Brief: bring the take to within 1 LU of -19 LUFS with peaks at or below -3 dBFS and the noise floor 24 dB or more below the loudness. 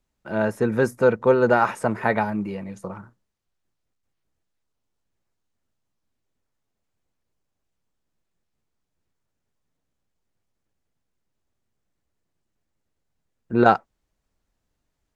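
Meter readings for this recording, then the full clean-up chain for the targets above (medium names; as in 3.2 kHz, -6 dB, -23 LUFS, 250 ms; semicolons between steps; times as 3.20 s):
loudness -21.5 LUFS; peak level -1.5 dBFS; loudness target -19.0 LUFS
-> trim +2.5 dB; peak limiter -3 dBFS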